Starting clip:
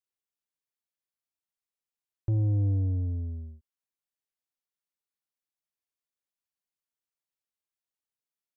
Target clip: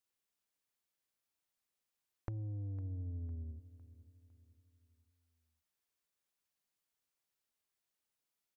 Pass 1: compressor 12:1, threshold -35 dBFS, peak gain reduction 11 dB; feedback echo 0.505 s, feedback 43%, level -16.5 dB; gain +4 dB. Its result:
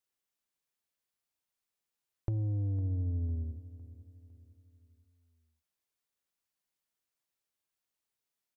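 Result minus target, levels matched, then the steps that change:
compressor: peak gain reduction -9 dB
change: compressor 12:1, threshold -45 dBFS, peak gain reduction 20 dB

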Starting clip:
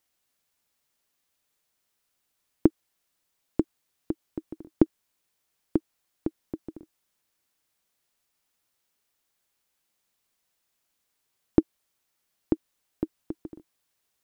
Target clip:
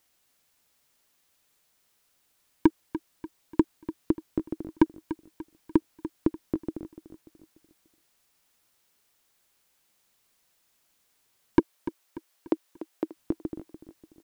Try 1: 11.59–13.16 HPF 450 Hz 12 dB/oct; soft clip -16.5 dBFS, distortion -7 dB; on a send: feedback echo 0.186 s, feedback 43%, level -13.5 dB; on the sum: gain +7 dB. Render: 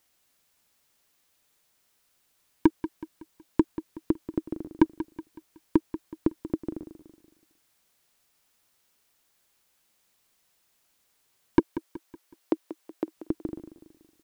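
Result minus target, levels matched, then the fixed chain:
echo 0.107 s early
11.59–13.16 HPF 450 Hz 12 dB/oct; soft clip -16.5 dBFS, distortion -7 dB; on a send: feedback echo 0.293 s, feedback 43%, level -13.5 dB; on the sum: gain +7 dB

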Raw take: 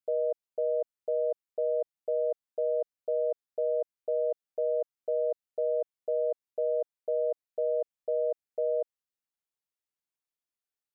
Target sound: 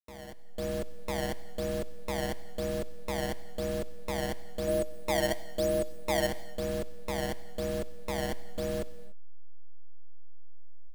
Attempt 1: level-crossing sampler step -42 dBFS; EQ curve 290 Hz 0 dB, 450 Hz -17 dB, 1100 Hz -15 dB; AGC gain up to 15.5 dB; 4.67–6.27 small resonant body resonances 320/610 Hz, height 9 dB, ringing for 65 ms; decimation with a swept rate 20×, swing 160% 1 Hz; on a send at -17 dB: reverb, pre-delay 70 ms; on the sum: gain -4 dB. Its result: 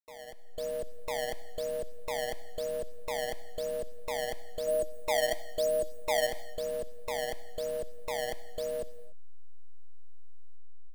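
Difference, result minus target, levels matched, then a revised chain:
level-crossing sampler: distortion -6 dB
level-crossing sampler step -32 dBFS; EQ curve 290 Hz 0 dB, 450 Hz -17 dB, 1100 Hz -15 dB; AGC gain up to 15.5 dB; 4.67–6.27 small resonant body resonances 320/610 Hz, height 9 dB, ringing for 65 ms; decimation with a swept rate 20×, swing 160% 1 Hz; on a send at -17 dB: reverb, pre-delay 70 ms; on the sum: gain -4 dB

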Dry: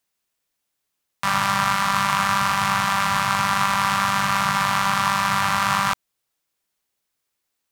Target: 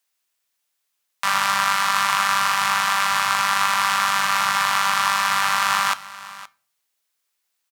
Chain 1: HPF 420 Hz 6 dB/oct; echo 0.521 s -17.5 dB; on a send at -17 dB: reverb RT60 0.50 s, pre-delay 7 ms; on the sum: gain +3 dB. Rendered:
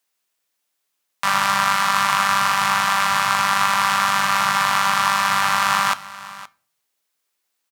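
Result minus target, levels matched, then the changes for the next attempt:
500 Hz band +2.5 dB
change: HPF 1000 Hz 6 dB/oct

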